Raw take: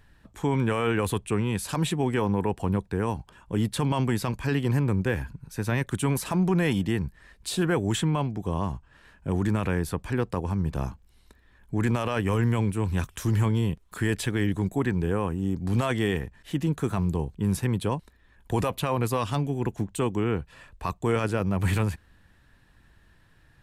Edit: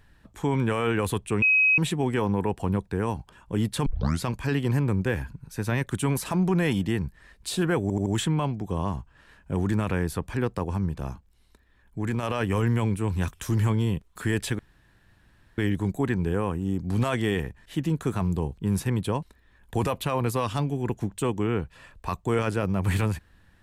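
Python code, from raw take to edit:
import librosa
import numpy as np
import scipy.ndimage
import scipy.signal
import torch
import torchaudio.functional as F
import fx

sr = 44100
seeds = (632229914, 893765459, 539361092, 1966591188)

y = fx.edit(x, sr, fx.bleep(start_s=1.42, length_s=0.36, hz=2540.0, db=-16.5),
    fx.tape_start(start_s=3.86, length_s=0.37),
    fx.stutter(start_s=7.82, slice_s=0.08, count=4),
    fx.clip_gain(start_s=10.65, length_s=1.34, db=-3.5),
    fx.insert_room_tone(at_s=14.35, length_s=0.99), tone=tone)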